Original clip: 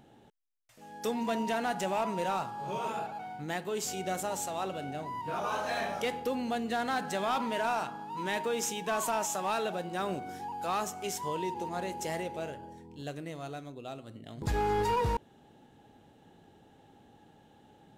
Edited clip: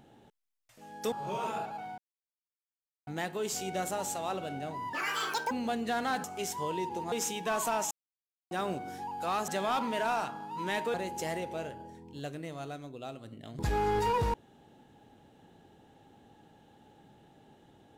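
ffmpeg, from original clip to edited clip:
ffmpeg -i in.wav -filter_complex "[0:a]asplit=11[link_01][link_02][link_03][link_04][link_05][link_06][link_07][link_08][link_09][link_10][link_11];[link_01]atrim=end=1.122[link_12];[link_02]atrim=start=2.528:end=3.39,asetpts=PTS-STARTPTS,afade=type=out:start_time=0.858:duration=0.004:curve=hsin,apad=pad_dur=1.09[link_13];[link_03]atrim=start=3.39:end=5.254,asetpts=PTS-STARTPTS,afade=type=in:duration=0.004:curve=hsin[link_14];[link_04]atrim=start=5.25:end=6.34,asetpts=PTS-STARTPTS,asetrate=82908,aresample=44100[link_15];[link_05]atrim=start=6.336:end=7.072[link_16];[link_06]atrim=start=10.888:end=11.772[link_17];[link_07]atrim=start=8.528:end=9.32,asetpts=PTS-STARTPTS,afade=type=out:start_time=0.788:duration=0.004:curve=hsin[link_18];[link_08]atrim=start=9.32:end=9.92,asetpts=PTS-STARTPTS,volume=0[link_19];[link_09]atrim=start=9.92:end=10.892,asetpts=PTS-STARTPTS,afade=type=in:duration=0.004:curve=hsin[link_20];[link_10]atrim=start=7.068:end=8.532[link_21];[link_11]atrim=start=11.768[link_22];[link_13][link_14]concat=n=2:v=0:a=1[link_23];[link_12][link_23]acrossfade=duration=0.004:curve1=hsin:curve2=hsin[link_24];[link_24][link_15]acrossfade=duration=0.004:curve1=hsin:curve2=hsin[link_25];[link_25][link_16]acrossfade=duration=0.004:curve1=hsin:curve2=hsin[link_26];[link_26][link_17]acrossfade=duration=0.004:curve1=hsin:curve2=hsin[link_27];[link_18][link_19][link_20]concat=n=3:v=0:a=1[link_28];[link_27][link_28]acrossfade=duration=0.004:curve1=hsin:curve2=hsin[link_29];[link_29][link_21]acrossfade=duration=0.004:curve1=hsin:curve2=hsin[link_30];[link_30][link_22]acrossfade=duration=0.004:curve1=hsin:curve2=hsin" out.wav

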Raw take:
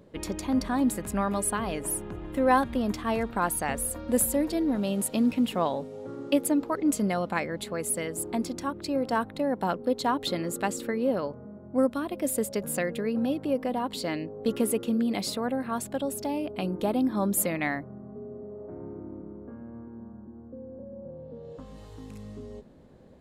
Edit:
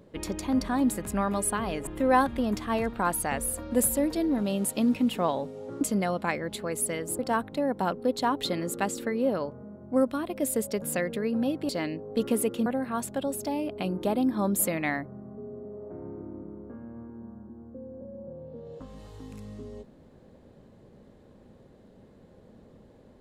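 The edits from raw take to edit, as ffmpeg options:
ffmpeg -i in.wav -filter_complex "[0:a]asplit=6[link_01][link_02][link_03][link_04][link_05][link_06];[link_01]atrim=end=1.872[link_07];[link_02]atrim=start=2.238:end=6.182[link_08];[link_03]atrim=start=6.888:end=8.272[link_09];[link_04]atrim=start=9.008:end=13.512[link_10];[link_05]atrim=start=13.978:end=14.952[link_11];[link_06]atrim=start=15.438[link_12];[link_07][link_08]acrossfade=duration=0.004:curve1=hsin:curve2=hsin[link_13];[link_13][link_09]acrossfade=duration=0.004:curve1=hsin:curve2=hsin[link_14];[link_14][link_10]acrossfade=duration=0.004:curve1=hsin:curve2=hsin[link_15];[link_15][link_11]acrossfade=duration=0.004:curve1=hsin:curve2=hsin[link_16];[link_16][link_12]acrossfade=duration=0.004:curve1=hsin:curve2=hsin" out.wav

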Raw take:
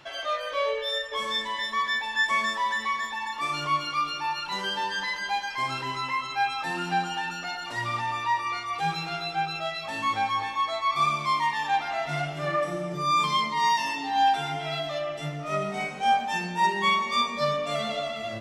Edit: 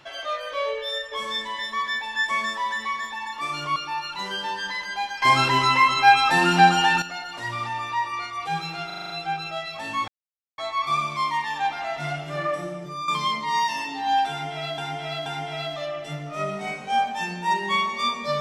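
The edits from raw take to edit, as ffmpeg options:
ffmpeg -i in.wav -filter_complex "[0:a]asplit=15[link_01][link_02][link_03][link_04][link_05][link_06][link_07][link_08][link_09][link_10][link_11][link_12][link_13][link_14][link_15];[link_01]atrim=end=3.762[link_16];[link_02]atrim=start=4.088:end=5.552[link_17];[link_03]atrim=start=5.548:end=7.352,asetpts=PTS-STARTPTS,volume=11.5dB[link_18];[link_04]atrim=start=7.348:end=9.232[link_19];[link_05]atrim=start=9.188:end=9.232[link_20];[link_06]atrim=start=9.188:end=9.232[link_21];[link_07]atrim=start=9.188:end=9.232[link_22];[link_08]atrim=start=9.188:end=9.232[link_23];[link_09]atrim=start=9.188:end=9.232[link_24];[link_10]atrim=start=9.188:end=10.17,asetpts=PTS-STARTPTS,afade=type=out:start_time=0.978:duration=0.004:curve=hsin[link_25];[link_11]atrim=start=10.17:end=10.67,asetpts=PTS-STARTPTS,volume=0[link_26];[link_12]atrim=start=10.67:end=13.17,asetpts=PTS-STARTPTS,afade=type=in:duration=0.004:curve=hsin,afade=type=out:start_time=2.02:duration=0.48:silence=0.316228[link_27];[link_13]atrim=start=13.17:end=14.872,asetpts=PTS-STARTPTS,afade=type=in:duration=0.004:curve=hsin:silence=0.316228[link_28];[link_14]atrim=start=14.388:end=14.872[link_29];[link_15]atrim=start=14.388[link_30];[link_16][link_17]acrossfade=duration=0.004:curve1=hsin:curve2=hsin[link_31];[link_31][link_18]acrossfade=duration=0.004:curve1=hsin:curve2=hsin[link_32];[link_32][link_19]acrossfade=duration=0.004:curve1=hsin:curve2=hsin[link_33];[link_33][link_20]acrossfade=duration=0.004:curve1=hsin:curve2=hsin[link_34];[link_34][link_21]acrossfade=duration=0.004:curve1=hsin:curve2=hsin[link_35];[link_35][link_22]acrossfade=duration=0.004:curve1=hsin:curve2=hsin[link_36];[link_36][link_23]acrossfade=duration=0.004:curve1=hsin:curve2=hsin[link_37];[link_37][link_24]acrossfade=duration=0.004:curve1=hsin:curve2=hsin[link_38];[link_25][link_26][link_27][link_28]concat=n=4:v=0:a=1[link_39];[link_38][link_39]acrossfade=duration=0.004:curve1=hsin:curve2=hsin[link_40];[link_40][link_29]acrossfade=duration=0.004:curve1=hsin:curve2=hsin[link_41];[link_41][link_30]acrossfade=duration=0.004:curve1=hsin:curve2=hsin" out.wav

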